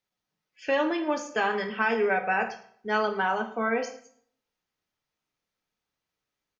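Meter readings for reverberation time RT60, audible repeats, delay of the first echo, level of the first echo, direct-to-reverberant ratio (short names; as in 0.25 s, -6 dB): 0.55 s, 1, 0.11 s, -18.0 dB, 5.5 dB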